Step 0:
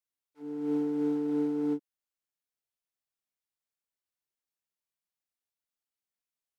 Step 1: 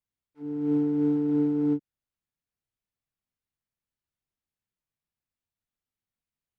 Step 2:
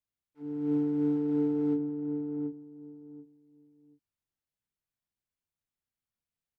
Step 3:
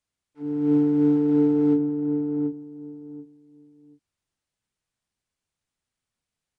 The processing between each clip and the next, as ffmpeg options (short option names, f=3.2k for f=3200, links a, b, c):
-af "bass=f=250:g=14,treble=f=4k:g=-7"
-filter_complex "[0:a]asplit=2[a][b];[b]adelay=733,lowpass=f=910:p=1,volume=-5dB,asplit=2[c][d];[d]adelay=733,lowpass=f=910:p=1,volume=0.21,asplit=2[e][f];[f]adelay=733,lowpass=f=910:p=1,volume=0.21[g];[a][c][e][g]amix=inputs=4:normalize=0,volume=-3.5dB"
-af "aresample=22050,aresample=44100,volume=8.5dB"